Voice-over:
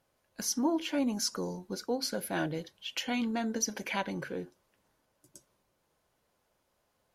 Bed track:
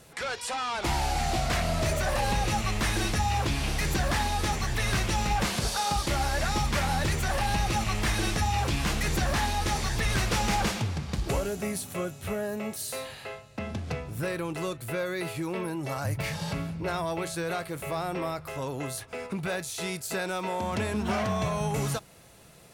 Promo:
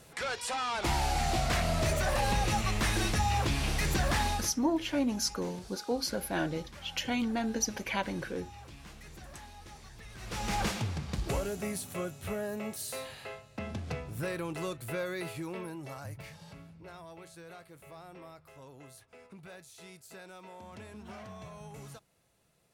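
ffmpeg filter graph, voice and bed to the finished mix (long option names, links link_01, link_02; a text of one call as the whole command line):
ffmpeg -i stem1.wav -i stem2.wav -filter_complex "[0:a]adelay=4000,volume=0.5dB[link_01];[1:a]volume=16dB,afade=type=out:start_time=4.3:duration=0.22:silence=0.1,afade=type=in:start_time=10.18:duration=0.45:silence=0.125893,afade=type=out:start_time=15.01:duration=1.37:silence=0.199526[link_02];[link_01][link_02]amix=inputs=2:normalize=0" out.wav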